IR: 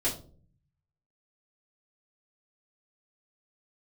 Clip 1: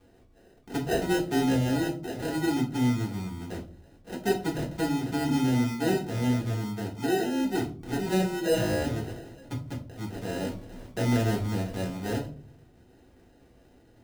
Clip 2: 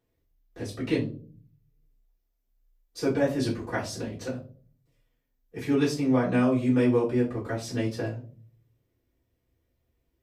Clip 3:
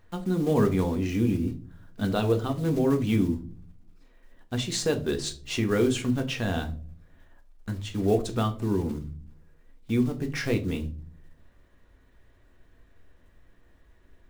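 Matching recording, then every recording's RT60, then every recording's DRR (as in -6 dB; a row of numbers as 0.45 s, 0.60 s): 2; 0.45 s, 0.45 s, 0.45 s; -3.5 dB, -9.5 dB, 5.0 dB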